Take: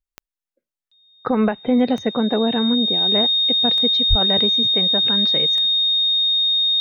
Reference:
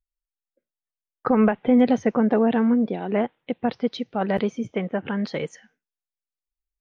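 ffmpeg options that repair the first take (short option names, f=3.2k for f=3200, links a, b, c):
-filter_complex "[0:a]adeclick=t=4,bandreject=f=3.7k:w=30,asplit=3[a][b][c];[a]afade=t=out:st=4.09:d=0.02[d];[b]highpass=f=140:w=0.5412,highpass=f=140:w=1.3066,afade=t=in:st=4.09:d=0.02,afade=t=out:st=4.21:d=0.02[e];[c]afade=t=in:st=4.21:d=0.02[f];[d][e][f]amix=inputs=3:normalize=0"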